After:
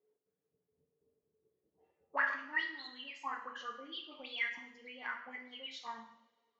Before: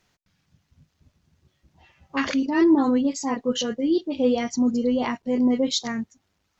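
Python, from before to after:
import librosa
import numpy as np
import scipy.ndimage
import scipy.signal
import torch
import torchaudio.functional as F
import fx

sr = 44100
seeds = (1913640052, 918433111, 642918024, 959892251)

y = fx.auto_wah(x, sr, base_hz=430.0, top_hz=4100.0, q=20.0, full_db=-15.5, direction='up')
y = fx.rev_double_slope(y, sr, seeds[0], early_s=0.65, late_s=2.2, knee_db=-24, drr_db=1.0)
y = y * librosa.db_to_amplitude(6.5)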